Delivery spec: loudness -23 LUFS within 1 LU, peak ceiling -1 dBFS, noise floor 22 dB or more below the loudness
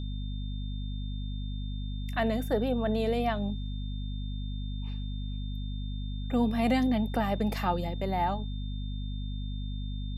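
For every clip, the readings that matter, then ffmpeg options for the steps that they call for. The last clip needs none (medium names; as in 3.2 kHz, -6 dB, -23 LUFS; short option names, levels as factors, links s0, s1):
hum 50 Hz; highest harmonic 250 Hz; hum level -32 dBFS; steady tone 3.6 kHz; tone level -49 dBFS; loudness -32.0 LUFS; peak level -14.5 dBFS; loudness target -23.0 LUFS
-> -af "bandreject=f=50:t=h:w=4,bandreject=f=100:t=h:w=4,bandreject=f=150:t=h:w=4,bandreject=f=200:t=h:w=4,bandreject=f=250:t=h:w=4"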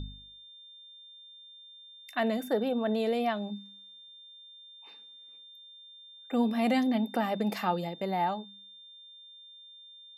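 hum not found; steady tone 3.6 kHz; tone level -49 dBFS
-> -af "bandreject=f=3600:w=30"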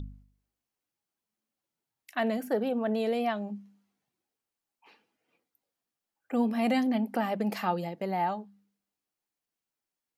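steady tone not found; loudness -30.5 LUFS; peak level -14.5 dBFS; loudness target -23.0 LUFS
-> -af "volume=2.37"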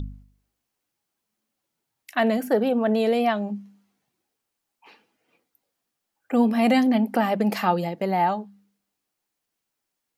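loudness -23.0 LUFS; peak level -7.0 dBFS; noise floor -82 dBFS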